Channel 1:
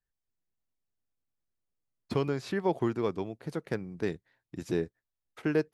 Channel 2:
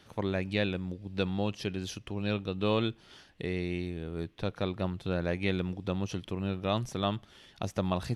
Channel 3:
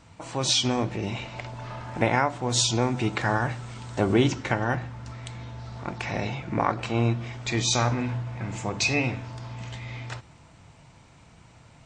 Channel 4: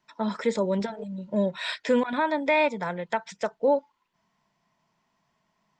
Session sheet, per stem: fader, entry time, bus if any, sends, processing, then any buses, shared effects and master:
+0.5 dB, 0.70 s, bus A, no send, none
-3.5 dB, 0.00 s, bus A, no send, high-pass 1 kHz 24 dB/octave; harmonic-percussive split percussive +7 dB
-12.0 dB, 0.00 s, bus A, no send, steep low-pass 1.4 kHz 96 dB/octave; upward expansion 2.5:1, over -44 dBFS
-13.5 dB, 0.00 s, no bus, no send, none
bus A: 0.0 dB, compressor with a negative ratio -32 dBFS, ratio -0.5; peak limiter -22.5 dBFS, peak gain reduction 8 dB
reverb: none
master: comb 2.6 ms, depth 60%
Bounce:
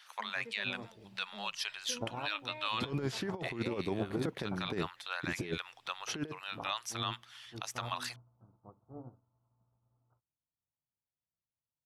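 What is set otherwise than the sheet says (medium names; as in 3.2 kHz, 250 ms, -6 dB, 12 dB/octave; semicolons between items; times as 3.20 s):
stem 4 -13.5 dB -> -25.5 dB; master: missing comb 2.6 ms, depth 60%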